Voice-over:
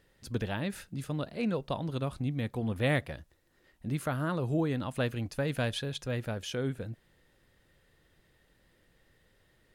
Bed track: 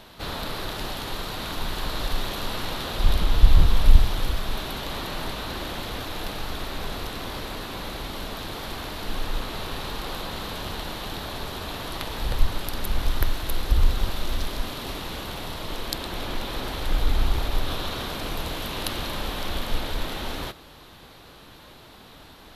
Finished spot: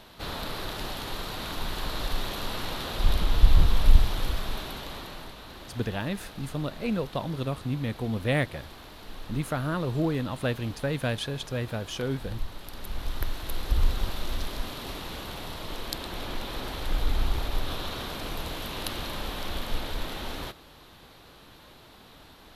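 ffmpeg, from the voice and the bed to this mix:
ffmpeg -i stem1.wav -i stem2.wav -filter_complex "[0:a]adelay=5450,volume=2.5dB[link_01];[1:a]volume=5.5dB,afade=type=out:start_time=4.4:duration=0.93:silence=0.334965,afade=type=in:start_time=12.58:duration=1.26:silence=0.375837[link_02];[link_01][link_02]amix=inputs=2:normalize=0" out.wav

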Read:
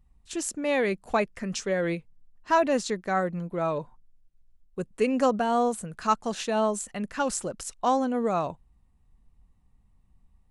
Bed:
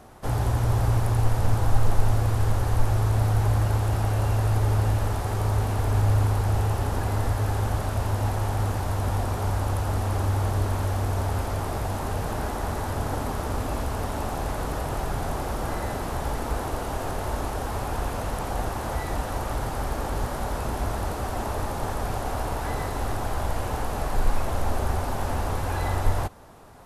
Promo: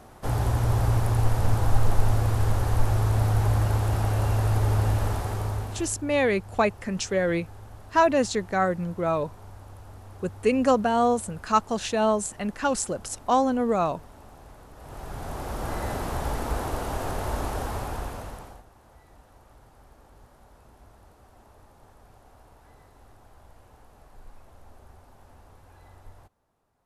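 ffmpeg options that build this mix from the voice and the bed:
ffmpeg -i stem1.wav -i stem2.wav -filter_complex "[0:a]adelay=5450,volume=2.5dB[link_01];[1:a]volume=18.5dB,afade=type=out:start_time=5.1:duration=0.87:silence=0.112202,afade=type=in:start_time=14.75:duration=1.16:silence=0.112202,afade=type=out:start_time=17.59:duration=1.04:silence=0.0562341[link_02];[link_01][link_02]amix=inputs=2:normalize=0" out.wav

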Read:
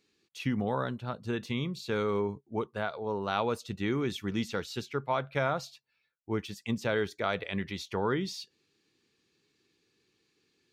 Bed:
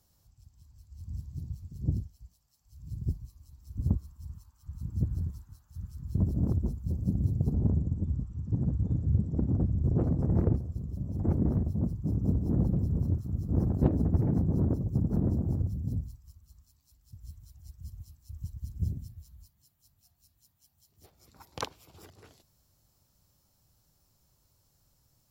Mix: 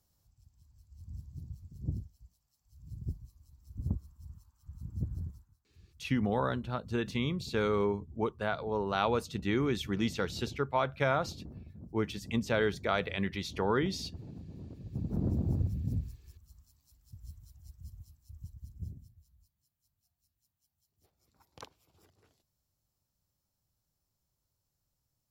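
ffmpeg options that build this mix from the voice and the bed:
ffmpeg -i stem1.wav -i stem2.wav -filter_complex "[0:a]adelay=5650,volume=0.5dB[link_01];[1:a]volume=12.5dB,afade=type=out:start_time=5.24:duration=0.32:silence=0.211349,afade=type=in:start_time=14.75:duration=0.72:silence=0.11885,afade=type=out:start_time=17:duration=2.12:silence=0.237137[link_02];[link_01][link_02]amix=inputs=2:normalize=0" out.wav

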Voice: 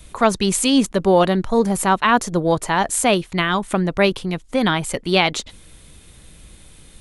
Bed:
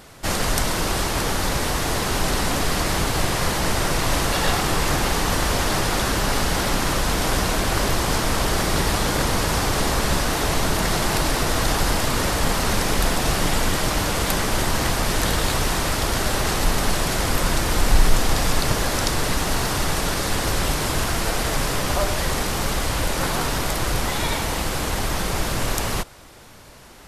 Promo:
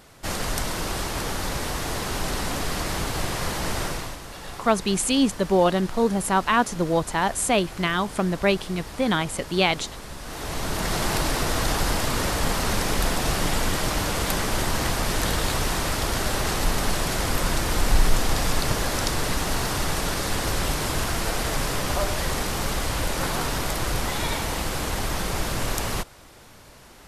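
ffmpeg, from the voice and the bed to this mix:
ffmpeg -i stem1.wav -i stem2.wav -filter_complex "[0:a]adelay=4450,volume=-4.5dB[link_01];[1:a]volume=9dB,afade=type=out:start_time=3.82:duration=0.35:silence=0.251189,afade=type=in:start_time=10.19:duration=0.85:silence=0.188365[link_02];[link_01][link_02]amix=inputs=2:normalize=0" out.wav

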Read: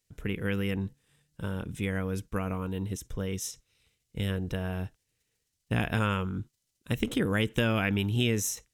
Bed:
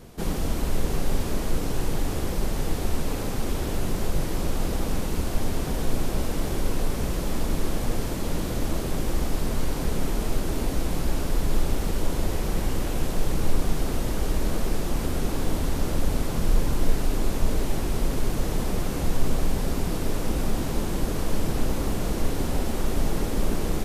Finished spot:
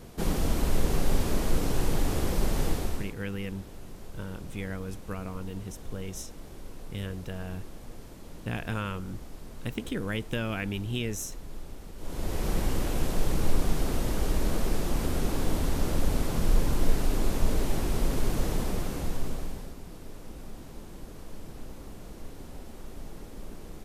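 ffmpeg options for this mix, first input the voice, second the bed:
ffmpeg -i stem1.wav -i stem2.wav -filter_complex "[0:a]adelay=2750,volume=-5dB[link_01];[1:a]volume=15.5dB,afade=type=out:start_time=2.65:duration=0.49:silence=0.133352,afade=type=in:start_time=11.97:duration=0.52:silence=0.158489,afade=type=out:start_time=18.43:duration=1.32:silence=0.16788[link_02];[link_01][link_02]amix=inputs=2:normalize=0" out.wav

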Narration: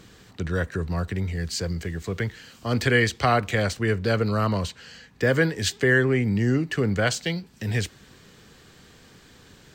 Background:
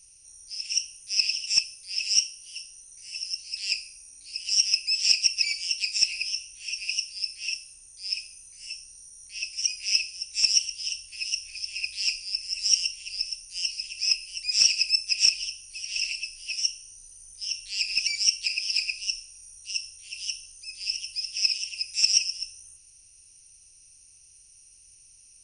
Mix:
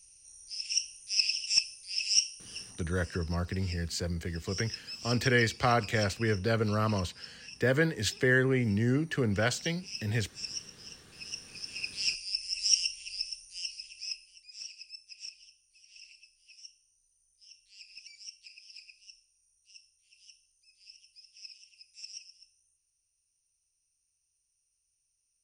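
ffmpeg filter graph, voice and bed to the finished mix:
ffmpeg -i stem1.wav -i stem2.wav -filter_complex "[0:a]adelay=2400,volume=-5.5dB[link_01];[1:a]volume=10dB,afade=type=out:start_time=2.97:duration=0.22:silence=0.211349,afade=type=in:start_time=11.04:duration=1.11:silence=0.211349,afade=type=out:start_time=12.82:duration=1.64:silence=0.0944061[link_02];[link_01][link_02]amix=inputs=2:normalize=0" out.wav

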